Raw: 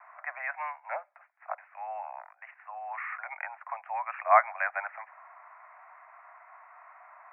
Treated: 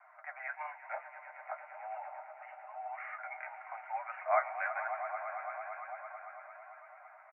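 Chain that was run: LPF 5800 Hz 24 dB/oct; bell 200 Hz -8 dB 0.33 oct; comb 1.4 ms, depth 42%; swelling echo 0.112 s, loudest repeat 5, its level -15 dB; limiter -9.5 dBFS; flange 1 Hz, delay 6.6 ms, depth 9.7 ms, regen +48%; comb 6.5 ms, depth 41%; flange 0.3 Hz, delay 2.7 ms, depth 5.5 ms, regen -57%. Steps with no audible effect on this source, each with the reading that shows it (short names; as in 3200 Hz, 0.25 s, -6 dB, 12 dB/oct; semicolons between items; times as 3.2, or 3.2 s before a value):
LPF 5800 Hz: input band ends at 2600 Hz; bell 200 Hz: input band starts at 510 Hz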